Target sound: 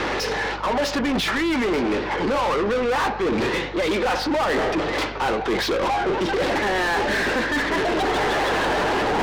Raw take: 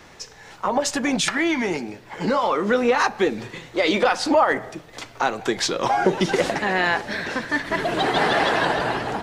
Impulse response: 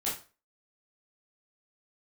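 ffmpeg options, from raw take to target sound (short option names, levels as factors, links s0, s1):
-filter_complex "[0:a]lowpass=f=5100:w=0.5412,lowpass=f=5100:w=1.3066,equalizer=f=340:w=0.64:g=9.5,bandreject=f=670:w=12,areverse,acompressor=threshold=0.0355:ratio=16,areverse,asplit=2[s0][s1];[s1]highpass=f=720:p=1,volume=28.2,asoftclip=type=tanh:threshold=0.0944[s2];[s0][s2]amix=inputs=2:normalize=0,lowpass=f=3500:p=1,volume=0.501,aeval=exprs='val(0)+0.00708*(sin(2*PI*50*n/s)+sin(2*PI*2*50*n/s)/2+sin(2*PI*3*50*n/s)/3+sin(2*PI*4*50*n/s)/4+sin(2*PI*5*50*n/s)/5)':c=same,volume=1.78"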